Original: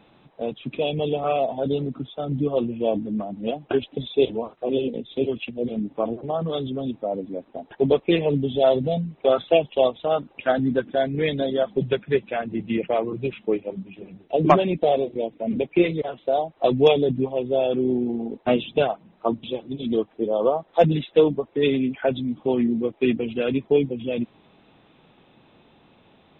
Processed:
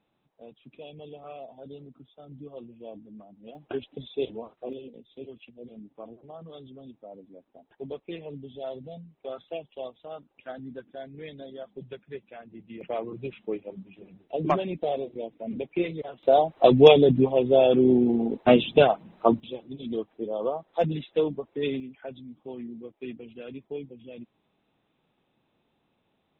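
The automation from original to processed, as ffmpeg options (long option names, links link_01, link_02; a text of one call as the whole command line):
ffmpeg -i in.wav -af "asetnsamples=nb_out_samples=441:pad=0,asendcmd='3.55 volume volume -10dB;4.73 volume volume -18dB;12.81 volume volume -8.5dB;16.23 volume volume 3dB;19.4 volume volume -8dB;21.8 volume volume -17dB',volume=-19.5dB" out.wav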